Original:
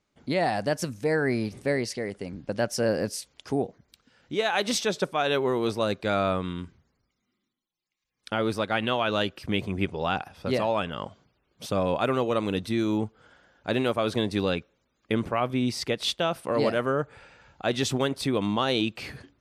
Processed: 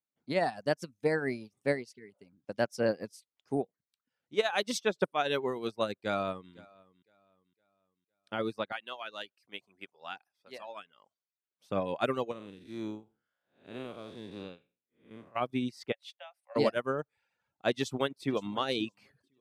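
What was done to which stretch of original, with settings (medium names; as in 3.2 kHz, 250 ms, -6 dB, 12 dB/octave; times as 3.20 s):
1.97–2.25 s: spectral replace 470–1500 Hz
5.99–6.51 s: echo throw 510 ms, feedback 40%, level -10 dB
8.72–11.66 s: high-pass 920 Hz 6 dB/octave
12.31–15.36 s: spectral blur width 216 ms
15.92–16.56 s: rippled Chebyshev high-pass 540 Hz, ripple 9 dB
17.70–18.54 s: echo throw 520 ms, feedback 50%, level -16.5 dB
whole clip: reverb removal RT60 0.54 s; high-pass 120 Hz; upward expansion 2.5:1, over -38 dBFS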